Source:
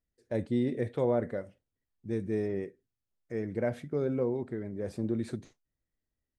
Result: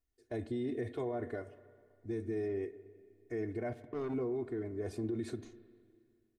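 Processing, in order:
comb filter 2.8 ms, depth 98%
brickwall limiter −25.5 dBFS, peak gain reduction 10 dB
0:03.73–0:04.14: power curve on the samples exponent 2
spring reverb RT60 2.2 s, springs 31/40/46 ms, chirp 80 ms, DRR 15 dB
level −3.5 dB

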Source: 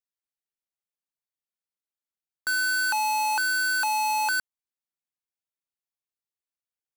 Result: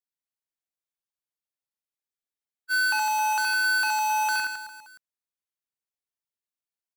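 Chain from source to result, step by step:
on a send: reverse bouncing-ball delay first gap 70 ms, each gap 1.25×, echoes 5
on the sum: dynamic equaliser 2,400 Hz, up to +6 dB, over −37 dBFS, Q 0.78
frozen spectrum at 0:01.89, 0.82 s
level −5 dB

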